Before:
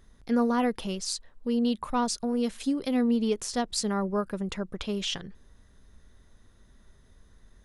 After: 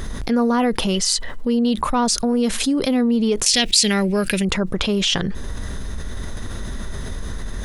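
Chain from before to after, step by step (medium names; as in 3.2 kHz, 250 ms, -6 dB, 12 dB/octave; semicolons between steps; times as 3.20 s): 0.94–1.47 s: small resonant body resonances 2/3 kHz, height 16 dB -> 12 dB; 3.46–4.45 s: resonant high shelf 1.7 kHz +13.5 dB, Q 3; level flattener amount 70%; trim -1 dB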